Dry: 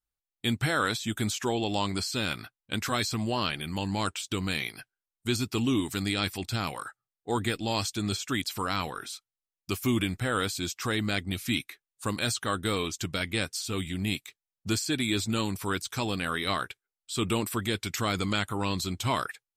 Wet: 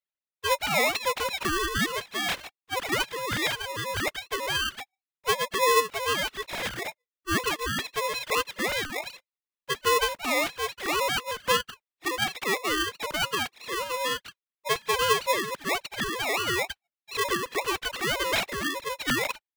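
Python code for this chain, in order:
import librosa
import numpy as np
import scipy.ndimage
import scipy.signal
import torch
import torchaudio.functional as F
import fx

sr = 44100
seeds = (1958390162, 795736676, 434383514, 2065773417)

y = fx.sine_speech(x, sr)
y = fx.high_shelf(y, sr, hz=2000.0, db=11.0)
y = y * np.sign(np.sin(2.0 * np.pi * 760.0 * np.arange(len(y)) / sr))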